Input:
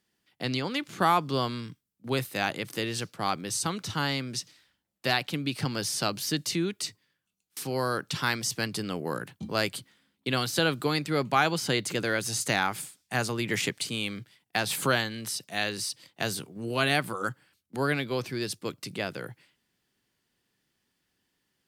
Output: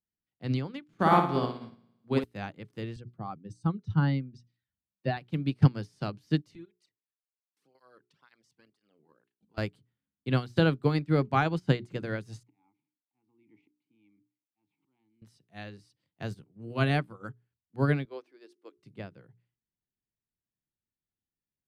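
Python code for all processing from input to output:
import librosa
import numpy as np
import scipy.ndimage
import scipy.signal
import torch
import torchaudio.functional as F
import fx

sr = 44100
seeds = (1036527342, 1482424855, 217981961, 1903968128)

y = fx.chain(x, sr, fx.highpass(hz=150.0, slope=12),
    fx.room_flutter(wall_m=9.7, rt60_s=1.0), at=(0.93, 2.24))
y = fx.chain(y, sr, fx.spec_expand(power=1.7),
    fx.highpass(hz=58.0, slope=12), at=(2.96, 5.17))
y = fx.chain(y, sr, fx.highpass(hz=510.0, slope=6),
    fx.level_steps(step_db=11),
    fx.flanger_cancel(hz=2.0, depth_ms=1.9), at=(6.55, 9.58))
y = fx.chain(y, sr, fx.auto_swell(attack_ms=413.0),
    fx.vowel_filter(vowel='u'), at=(12.43, 15.22))
y = fx.chain(y, sr, fx.cheby1_highpass(hz=310.0, order=4),
    fx.hum_notches(base_hz=50, count=8), at=(18.05, 18.77))
y = fx.riaa(y, sr, side='playback')
y = fx.hum_notches(y, sr, base_hz=60, count=7)
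y = fx.upward_expand(y, sr, threshold_db=-35.0, expansion=2.5)
y = F.gain(torch.from_numpy(y), 3.5).numpy()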